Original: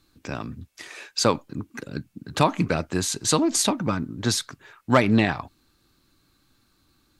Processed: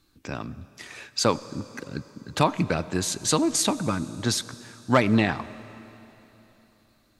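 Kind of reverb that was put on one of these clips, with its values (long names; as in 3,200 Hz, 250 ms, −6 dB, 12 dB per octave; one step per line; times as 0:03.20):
comb and all-pass reverb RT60 3.4 s, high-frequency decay 1×, pre-delay 50 ms, DRR 17 dB
level −1.5 dB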